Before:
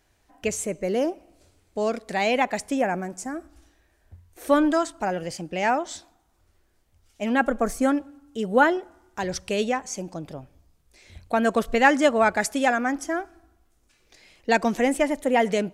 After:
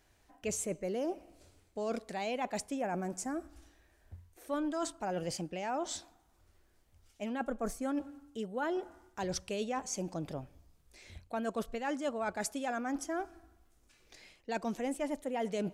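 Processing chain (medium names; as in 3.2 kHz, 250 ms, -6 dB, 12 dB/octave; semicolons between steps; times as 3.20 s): reverse; compression 6:1, threshold -30 dBFS, peak gain reduction 17.5 dB; reverse; dynamic bell 1.9 kHz, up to -6 dB, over -50 dBFS, Q 2.3; trim -2.5 dB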